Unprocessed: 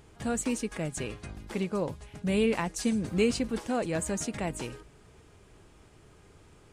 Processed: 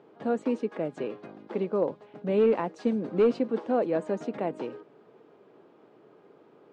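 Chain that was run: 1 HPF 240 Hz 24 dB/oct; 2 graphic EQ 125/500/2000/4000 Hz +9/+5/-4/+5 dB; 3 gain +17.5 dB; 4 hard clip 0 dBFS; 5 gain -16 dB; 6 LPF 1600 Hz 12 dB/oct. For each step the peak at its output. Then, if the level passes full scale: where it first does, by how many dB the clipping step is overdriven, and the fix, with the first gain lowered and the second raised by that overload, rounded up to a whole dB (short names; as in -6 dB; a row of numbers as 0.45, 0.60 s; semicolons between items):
-14.5, -12.0, +5.5, 0.0, -16.0, -15.5 dBFS; step 3, 5.5 dB; step 3 +11.5 dB, step 5 -10 dB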